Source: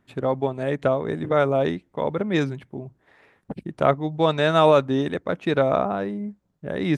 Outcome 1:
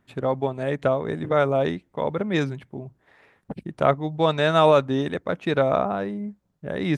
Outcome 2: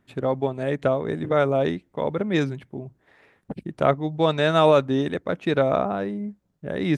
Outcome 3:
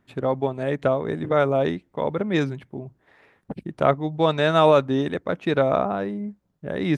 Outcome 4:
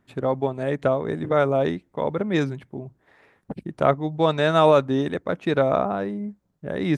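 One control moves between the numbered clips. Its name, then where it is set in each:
bell, frequency: 320, 1000, 8300, 2900 Hz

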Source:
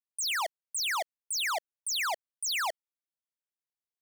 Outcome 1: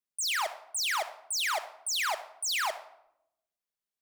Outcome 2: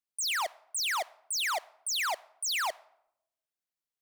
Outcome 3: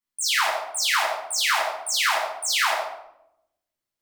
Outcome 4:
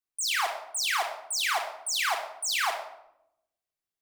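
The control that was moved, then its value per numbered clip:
shoebox room, microphone at: 1.3, 0.38, 11, 3.6 m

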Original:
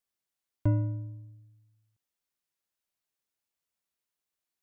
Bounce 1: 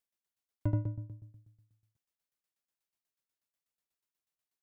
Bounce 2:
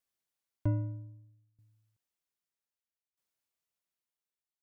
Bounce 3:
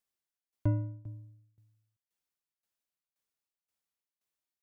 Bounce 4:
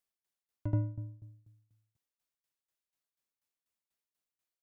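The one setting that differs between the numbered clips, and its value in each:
tremolo, rate: 8.2, 0.63, 1.9, 4.1 Hz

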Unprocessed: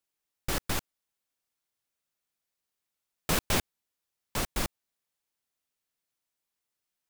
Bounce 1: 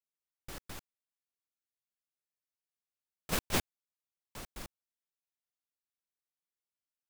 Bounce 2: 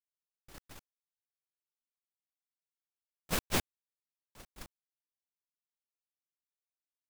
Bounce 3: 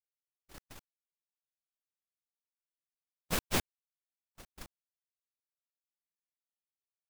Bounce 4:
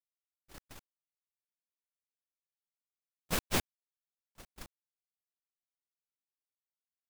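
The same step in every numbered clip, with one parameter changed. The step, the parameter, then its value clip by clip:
gate, range: -15, -27, -57, -43 dB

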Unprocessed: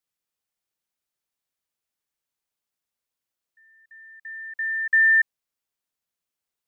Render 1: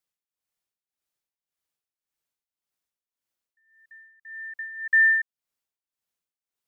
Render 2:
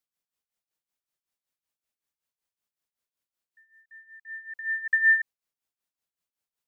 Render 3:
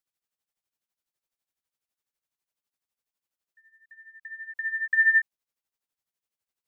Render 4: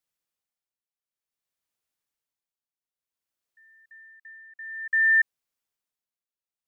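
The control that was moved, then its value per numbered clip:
tremolo, rate: 1.8, 5.3, 12, 0.55 Hz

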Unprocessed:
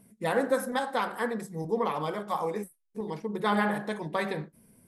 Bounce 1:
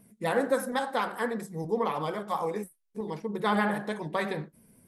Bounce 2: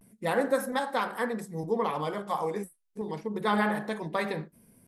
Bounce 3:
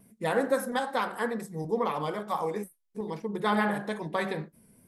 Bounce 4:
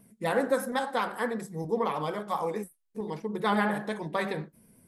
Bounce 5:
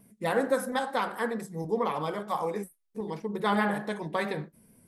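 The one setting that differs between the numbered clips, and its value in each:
vibrato, rate: 12, 0.3, 2.3, 8.2, 4.5 Hz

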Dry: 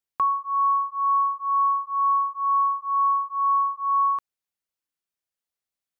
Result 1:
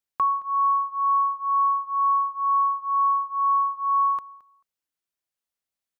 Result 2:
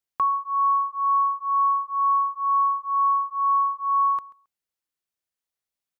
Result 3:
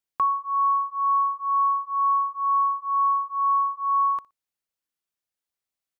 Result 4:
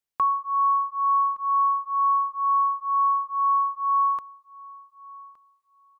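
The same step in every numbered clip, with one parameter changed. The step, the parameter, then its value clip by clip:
feedback echo, time: 219, 135, 60, 1166 ms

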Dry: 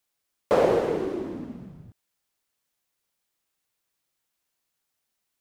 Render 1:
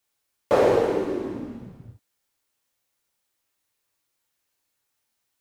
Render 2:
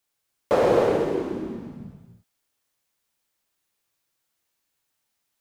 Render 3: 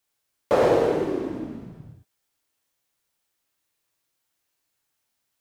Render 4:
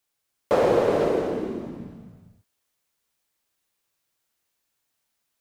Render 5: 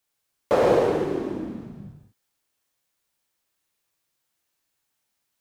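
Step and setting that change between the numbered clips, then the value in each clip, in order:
non-linear reverb, gate: 80, 330, 140, 530, 220 ms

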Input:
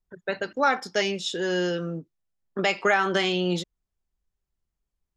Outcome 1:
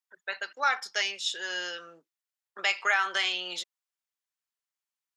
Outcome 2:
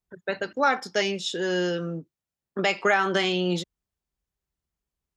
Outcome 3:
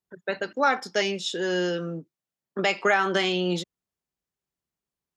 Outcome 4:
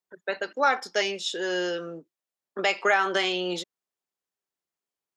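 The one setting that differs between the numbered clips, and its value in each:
HPF, cutoff: 1200, 53, 140, 370 Hz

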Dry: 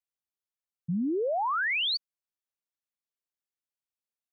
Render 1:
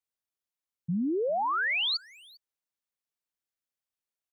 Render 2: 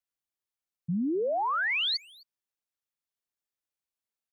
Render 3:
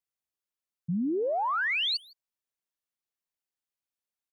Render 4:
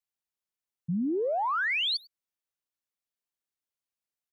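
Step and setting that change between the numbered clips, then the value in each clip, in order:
speakerphone echo, time: 0.4, 0.26, 0.16, 0.1 s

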